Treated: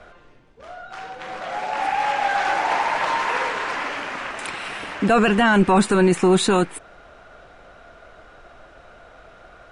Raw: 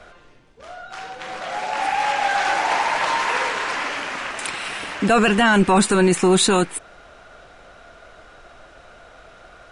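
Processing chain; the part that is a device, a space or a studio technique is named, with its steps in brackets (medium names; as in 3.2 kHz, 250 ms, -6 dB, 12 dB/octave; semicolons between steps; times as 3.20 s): behind a face mask (treble shelf 3.3 kHz -8 dB)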